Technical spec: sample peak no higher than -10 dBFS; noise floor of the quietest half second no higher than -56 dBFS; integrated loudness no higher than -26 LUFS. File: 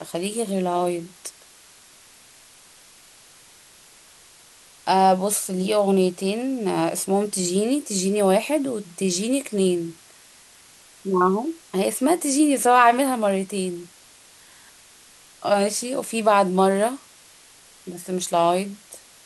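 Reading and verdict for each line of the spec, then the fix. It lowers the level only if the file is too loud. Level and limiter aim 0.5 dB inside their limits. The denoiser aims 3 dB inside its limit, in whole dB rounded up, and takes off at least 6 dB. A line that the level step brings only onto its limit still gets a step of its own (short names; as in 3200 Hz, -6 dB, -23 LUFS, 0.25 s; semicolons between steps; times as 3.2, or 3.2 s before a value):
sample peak -4.0 dBFS: fail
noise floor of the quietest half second -51 dBFS: fail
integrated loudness -21.5 LUFS: fail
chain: denoiser 6 dB, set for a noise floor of -51 dBFS; gain -5 dB; limiter -10.5 dBFS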